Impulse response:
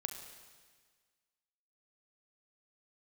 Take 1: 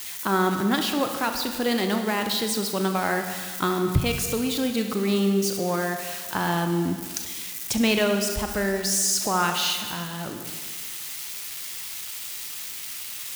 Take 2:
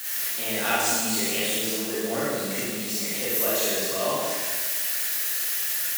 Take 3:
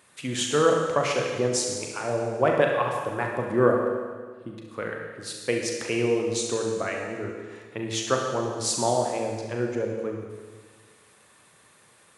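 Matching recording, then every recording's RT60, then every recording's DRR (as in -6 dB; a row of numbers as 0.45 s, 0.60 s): 1; 1.6 s, 1.6 s, 1.6 s; 5.0 dB, -9.0 dB, 0.5 dB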